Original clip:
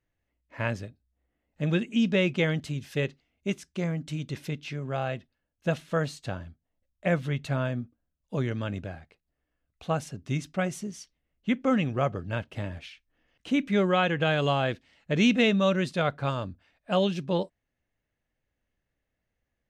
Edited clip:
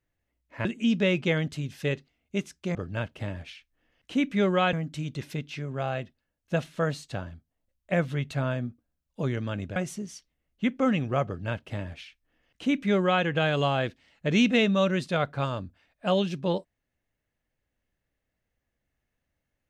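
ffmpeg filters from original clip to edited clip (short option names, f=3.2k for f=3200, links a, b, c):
-filter_complex "[0:a]asplit=5[a][b][c][d][e];[a]atrim=end=0.652[f];[b]atrim=start=1.768:end=3.872[g];[c]atrim=start=12.108:end=14.092[h];[d]atrim=start=3.868:end=8.902[i];[e]atrim=start=10.608[j];[f][g]acrossfade=d=0.004:c1=hsin:c2=hsin[k];[k][h]acrossfade=d=0.004:c1=hsin:c2=hsin[l];[l][i]acrossfade=d=0.004:c1=hsin:c2=hsin[m];[m][j]acrossfade=d=0.004:c1=hsin:c2=hsin"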